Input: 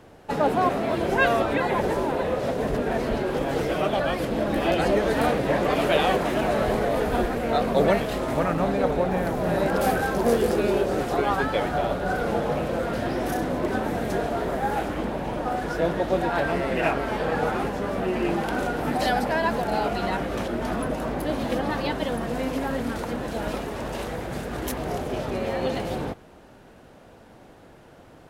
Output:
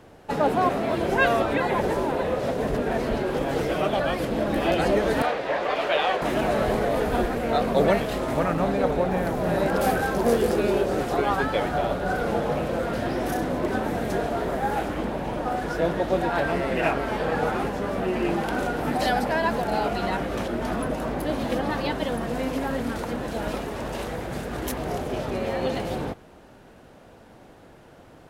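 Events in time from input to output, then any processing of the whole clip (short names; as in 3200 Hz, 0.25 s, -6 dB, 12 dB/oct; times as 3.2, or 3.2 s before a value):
5.22–6.22 three-band isolator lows -16 dB, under 440 Hz, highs -15 dB, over 5800 Hz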